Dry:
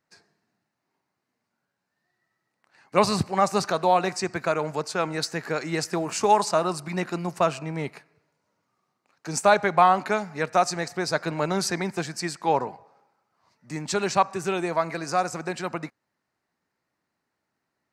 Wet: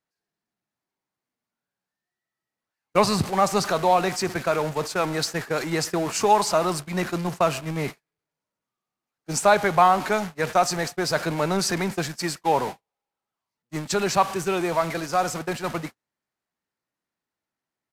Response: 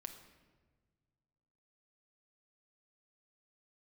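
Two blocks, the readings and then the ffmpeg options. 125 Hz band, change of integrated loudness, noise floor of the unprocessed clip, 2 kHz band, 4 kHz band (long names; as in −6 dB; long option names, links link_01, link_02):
+2.5 dB, +1.5 dB, −81 dBFS, +1.5 dB, +3.0 dB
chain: -af "aeval=exprs='val(0)+0.5*0.0355*sgn(val(0))':channel_layout=same,aresample=32000,aresample=44100,agate=range=-53dB:threshold=-28dB:ratio=16:detection=peak"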